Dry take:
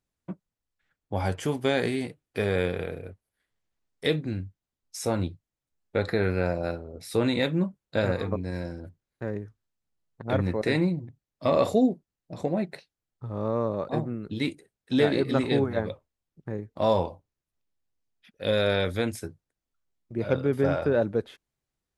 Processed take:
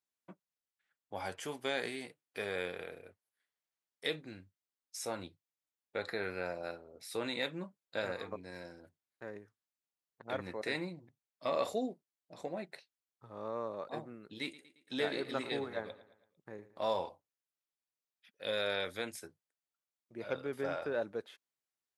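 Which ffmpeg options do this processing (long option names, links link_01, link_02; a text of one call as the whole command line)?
ffmpeg -i in.wav -filter_complex "[0:a]asettb=1/sr,asplit=3[link_01][link_02][link_03];[link_01]atrim=end=14.424[link_04];[link_02]atrim=start=14.42:end=17.09,asetpts=PTS-STARTPTS,afade=type=in:duration=0.004:curve=qsin,afade=type=out:start_time=2.666:duration=0.004:curve=qsin,aecho=1:1:112|224|336|448:0.141|0.0692|0.0339|0.0166,atrim=end_sample=117747[link_05];[link_03]atrim=start=17.086[link_06];[link_04][link_05]acrossfade=duration=0.004:curve1=hsin:curve2=qsin[link_07];[link_07][link_06]acrossfade=duration=0.004:curve1=qsin:curve2=hsin,highpass=frequency=820:poles=1,volume=-6dB" out.wav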